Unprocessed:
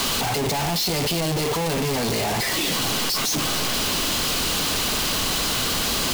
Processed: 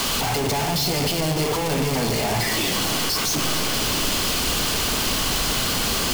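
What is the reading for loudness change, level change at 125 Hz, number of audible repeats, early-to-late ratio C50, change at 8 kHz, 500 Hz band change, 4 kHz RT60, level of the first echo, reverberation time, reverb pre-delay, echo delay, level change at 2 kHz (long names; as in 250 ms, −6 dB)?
+0.5 dB, +2.0 dB, no echo audible, 8.5 dB, +0.5 dB, +1.0 dB, 1.6 s, no echo audible, 2.0 s, 26 ms, no echo audible, +0.5 dB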